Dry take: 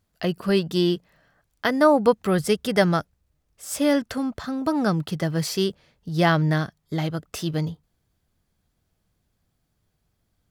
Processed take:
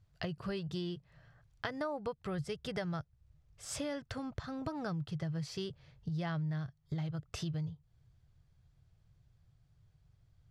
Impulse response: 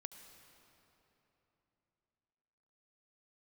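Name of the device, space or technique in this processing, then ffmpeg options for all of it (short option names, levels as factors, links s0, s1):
jukebox: -af "lowpass=6400,lowshelf=f=170:t=q:w=3:g=8.5,acompressor=threshold=0.0224:ratio=5,volume=0.631"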